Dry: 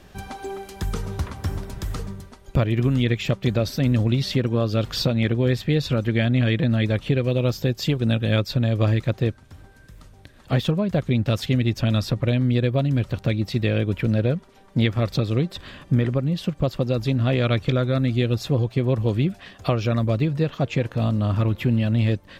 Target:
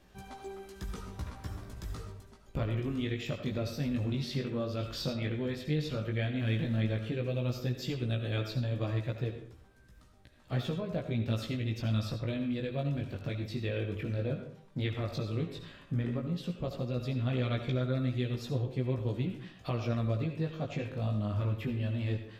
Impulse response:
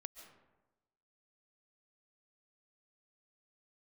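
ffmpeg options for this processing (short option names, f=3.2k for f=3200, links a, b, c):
-filter_complex "[0:a]asettb=1/sr,asplit=3[a][b][c];[a]atrim=end=6.394[d];[b]atrim=start=6.39:end=6.8,asetpts=PTS-STARTPTS,afade=t=in:d=0.004:c=qsin,afade=t=out:st=0.406:d=0.004:c=qsin,aeval=exprs='val(0)+0.5*0.0119*sgn(val(0))':c=same[e];[c]atrim=start=6.796[f];[d][e]acrossfade=d=0.004:c1=hsin:c2=qsin[g];[g][f]acrossfade=d=0.004:c1=qsin:c2=hsin[h];[1:a]atrim=start_sample=2205,asetrate=88200,aresample=44100[i];[h][i]afir=irnorm=-1:irlink=0,flanger=delay=15.5:depth=5.3:speed=0.11,volume=2.5dB"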